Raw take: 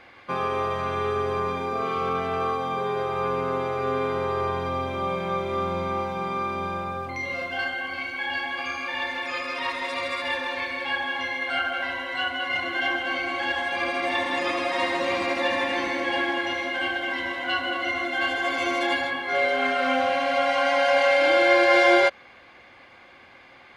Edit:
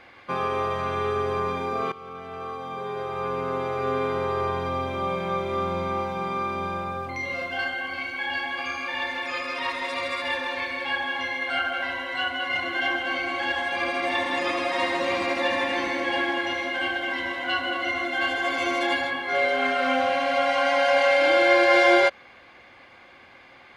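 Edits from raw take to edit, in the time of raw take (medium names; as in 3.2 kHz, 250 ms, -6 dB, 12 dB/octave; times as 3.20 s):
1.92–3.88 s: fade in, from -17 dB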